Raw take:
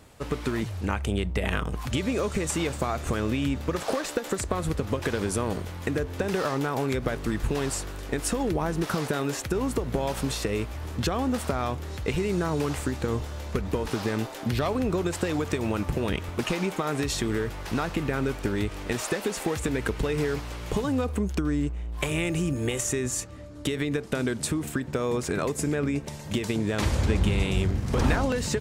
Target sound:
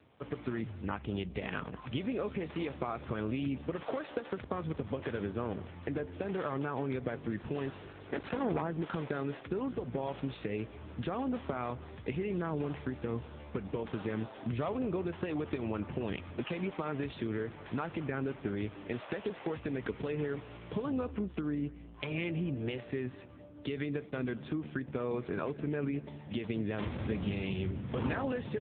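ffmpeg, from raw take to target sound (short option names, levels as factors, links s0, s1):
-filter_complex "[0:a]asplit=2[s0][s1];[s1]adelay=204.1,volume=0.112,highshelf=f=4000:g=-4.59[s2];[s0][s2]amix=inputs=2:normalize=0,asettb=1/sr,asplit=3[s3][s4][s5];[s3]atrim=end=7.884[s6];[s4]atrim=start=7.88:end=8.61,asetpts=PTS-STARTPTS,afade=t=in:d=0.004:c=qsin,afade=t=out:st=0.726:d=0.004:c=qsin,aeval=exprs='0.2*(cos(1*acos(clip(val(0)/0.2,-1,1)))-cos(1*PI/2))+0.01*(cos(2*acos(clip(val(0)/0.2,-1,1)))-cos(2*PI/2))+0.0224*(cos(4*acos(clip(val(0)/0.2,-1,1)))-cos(4*PI/2))+0.0708*(cos(6*acos(clip(val(0)/0.2,-1,1)))-cos(6*PI/2))+0.002*(cos(7*acos(clip(val(0)/0.2,-1,1)))-cos(7*PI/2))':c=same[s7];[s5]atrim=start=8.606[s8];[s6][s7]acrossfade=d=0.004:c1=hsin:c2=qsin[s9];[s9][s8]acrossfade=d=0.004:c1=qsin:c2=hsin,volume=0.447" -ar 8000 -c:a libopencore_amrnb -b:a 6700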